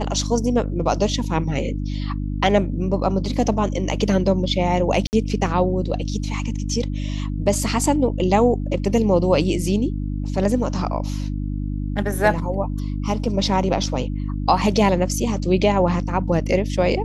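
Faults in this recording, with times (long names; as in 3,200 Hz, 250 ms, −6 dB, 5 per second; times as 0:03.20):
mains hum 50 Hz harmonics 6 −25 dBFS
0:05.07–0:05.13: drop-out 59 ms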